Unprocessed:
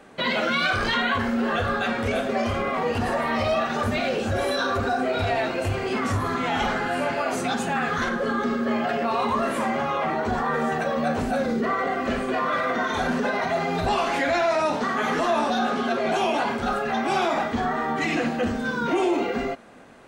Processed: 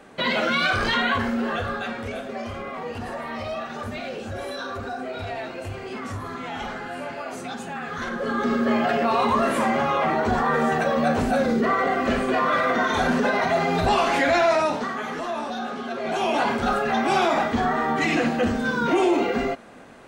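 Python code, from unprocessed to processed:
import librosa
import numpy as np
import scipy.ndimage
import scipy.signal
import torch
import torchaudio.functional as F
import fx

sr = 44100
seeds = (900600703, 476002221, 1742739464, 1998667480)

y = fx.gain(x, sr, db=fx.line((1.13, 1.0), (2.2, -7.5), (7.85, -7.5), (8.56, 3.0), (14.52, 3.0), (15.08, -6.5), (15.89, -6.5), (16.43, 2.5)))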